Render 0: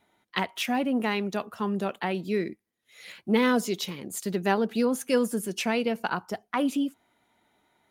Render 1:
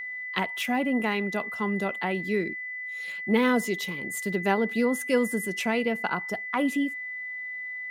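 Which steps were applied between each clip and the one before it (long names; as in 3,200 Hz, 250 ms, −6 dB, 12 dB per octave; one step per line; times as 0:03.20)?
dynamic equaliser 5,000 Hz, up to −5 dB, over −48 dBFS, Q 1.5
steady tone 2,000 Hz −33 dBFS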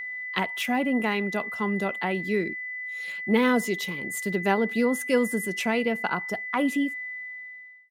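fade-out on the ending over 0.89 s
level +1 dB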